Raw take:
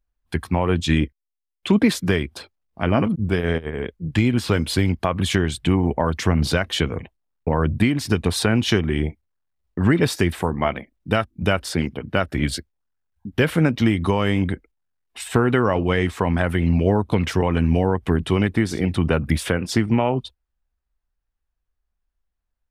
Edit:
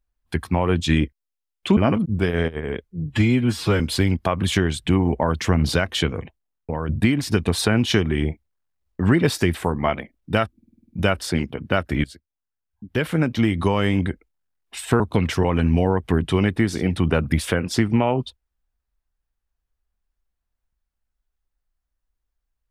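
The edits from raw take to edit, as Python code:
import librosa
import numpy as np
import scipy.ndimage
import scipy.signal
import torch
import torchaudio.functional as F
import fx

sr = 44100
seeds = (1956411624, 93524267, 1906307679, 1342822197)

y = fx.edit(x, sr, fx.cut(start_s=1.77, length_s=1.1),
    fx.stretch_span(start_s=3.94, length_s=0.64, factor=1.5),
    fx.fade_out_to(start_s=6.78, length_s=0.89, floor_db=-8.0),
    fx.stutter(start_s=11.33, slice_s=0.05, count=8),
    fx.fade_in_from(start_s=12.47, length_s=1.65, floor_db=-18.0),
    fx.cut(start_s=15.43, length_s=1.55), tone=tone)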